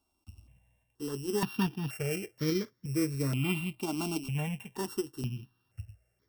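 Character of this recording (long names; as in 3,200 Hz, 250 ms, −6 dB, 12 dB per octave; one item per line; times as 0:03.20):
a buzz of ramps at a fixed pitch in blocks of 16 samples
tremolo saw up 1.2 Hz, depth 35%
notches that jump at a steady rate 2.1 Hz 490–2,700 Hz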